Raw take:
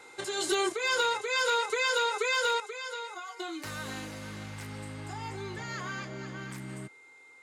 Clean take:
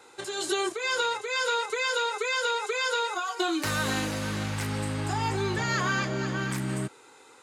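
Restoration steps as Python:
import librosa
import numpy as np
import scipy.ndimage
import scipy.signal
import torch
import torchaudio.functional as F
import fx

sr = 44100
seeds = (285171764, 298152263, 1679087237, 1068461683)

y = fx.fix_declip(x, sr, threshold_db=-20.0)
y = fx.notch(y, sr, hz=2100.0, q=30.0)
y = fx.fix_level(y, sr, at_s=2.6, step_db=10.5)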